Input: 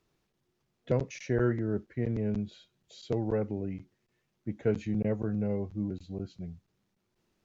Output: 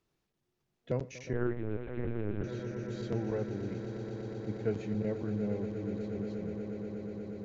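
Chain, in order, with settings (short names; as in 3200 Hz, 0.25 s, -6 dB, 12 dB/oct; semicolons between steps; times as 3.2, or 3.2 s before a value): on a send: swelling echo 0.12 s, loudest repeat 8, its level -13 dB; 1.33–2.44 on the sum: LPC vocoder at 8 kHz pitch kept; gain -5 dB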